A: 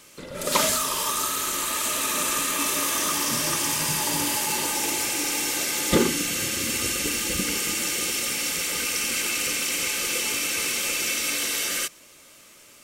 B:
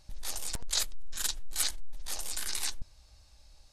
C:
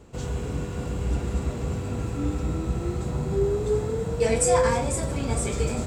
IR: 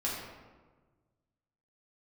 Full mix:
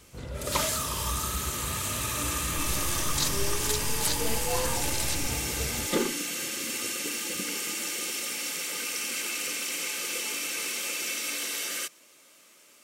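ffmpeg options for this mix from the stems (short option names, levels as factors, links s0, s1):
-filter_complex "[0:a]highpass=210,volume=0.501[s0];[1:a]adelay=2450,volume=1.06[s1];[2:a]lowpass=f=2200:p=1,equalizer=f=450:t=o:w=1.8:g=-4,volume=0.398[s2];[s0][s1][s2]amix=inputs=3:normalize=0"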